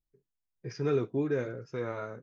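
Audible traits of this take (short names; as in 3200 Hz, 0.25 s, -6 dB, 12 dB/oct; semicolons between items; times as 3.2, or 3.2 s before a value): noise floor -87 dBFS; spectral tilt -6.0 dB/oct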